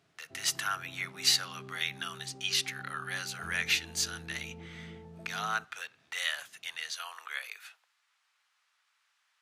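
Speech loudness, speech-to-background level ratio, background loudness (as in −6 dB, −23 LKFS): −33.0 LKFS, 16.5 dB, −49.5 LKFS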